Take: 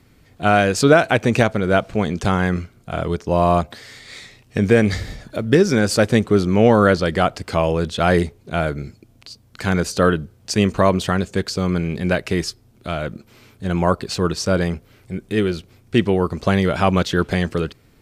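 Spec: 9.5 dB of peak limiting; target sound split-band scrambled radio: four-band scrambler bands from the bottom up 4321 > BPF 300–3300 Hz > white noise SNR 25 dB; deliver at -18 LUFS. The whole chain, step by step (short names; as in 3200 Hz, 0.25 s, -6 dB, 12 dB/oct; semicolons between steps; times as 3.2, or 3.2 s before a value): limiter -11 dBFS; four-band scrambler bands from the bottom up 4321; BPF 300–3300 Hz; white noise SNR 25 dB; gain +9 dB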